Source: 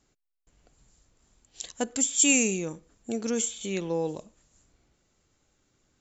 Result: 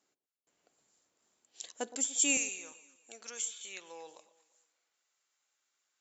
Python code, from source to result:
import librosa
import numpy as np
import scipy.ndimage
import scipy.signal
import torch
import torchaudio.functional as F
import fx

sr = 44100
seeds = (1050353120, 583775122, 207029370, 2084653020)

y = fx.highpass(x, sr, hz=fx.steps((0.0, 340.0), (2.37, 1100.0)), slope=12)
y = fx.echo_alternate(y, sr, ms=117, hz=980.0, feedback_pct=51, wet_db=-13.0)
y = y * librosa.db_to_amplitude(-6.5)